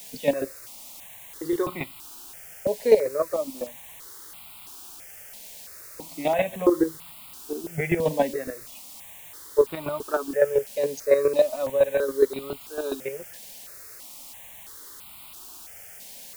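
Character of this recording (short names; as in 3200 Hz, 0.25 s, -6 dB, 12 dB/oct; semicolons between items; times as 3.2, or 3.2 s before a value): chopped level 7.2 Hz, depth 65%, duty 20%; a quantiser's noise floor 8-bit, dither triangular; notches that jump at a steady rate 3 Hz 340–1700 Hz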